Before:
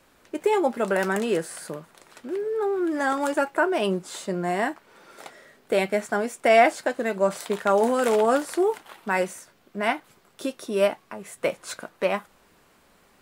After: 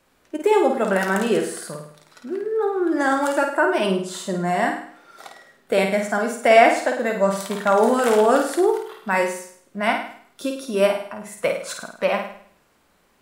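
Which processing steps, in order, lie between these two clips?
spectral noise reduction 7 dB; flutter echo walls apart 8.9 m, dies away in 0.57 s; trim +3 dB

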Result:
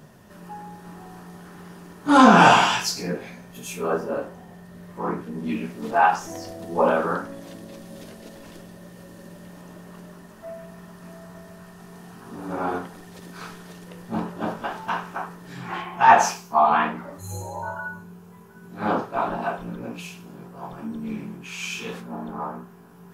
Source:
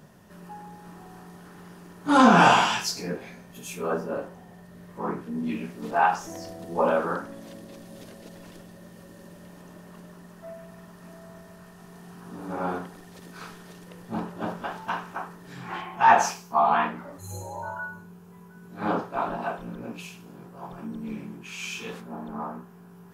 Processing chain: flange 0.16 Hz, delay 7.7 ms, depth 9.5 ms, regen -60%; trim +7.5 dB

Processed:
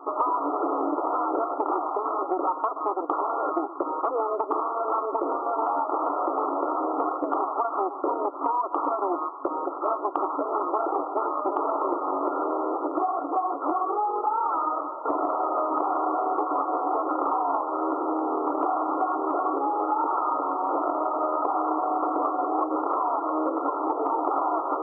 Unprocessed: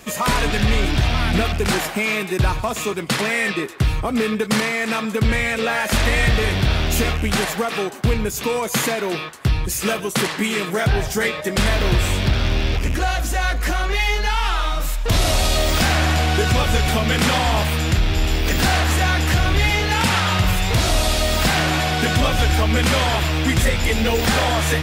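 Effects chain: comb filter that takes the minimum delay 1 ms; FFT band-pass 270–1400 Hz; compression, threshold -31 dBFS, peak gain reduction 10.5 dB; trim +8.5 dB

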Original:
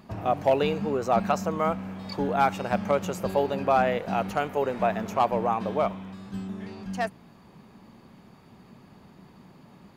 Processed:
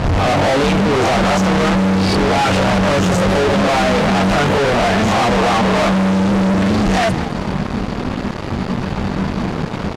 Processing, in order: reverse spectral sustain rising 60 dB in 0.38 s; gate -44 dBFS, range -7 dB; bass shelf 130 Hz +11.5 dB; in parallel at +1 dB: compression, threshold -39 dBFS, peak gain reduction 21 dB; on the sum: chorus voices 4, 0.23 Hz, delay 23 ms, depth 2.7 ms; fuzz box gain 51 dB, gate -51 dBFS; distance through air 67 m; on a send: frequency-shifting echo 205 ms, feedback 60%, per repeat +130 Hz, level -16 dB

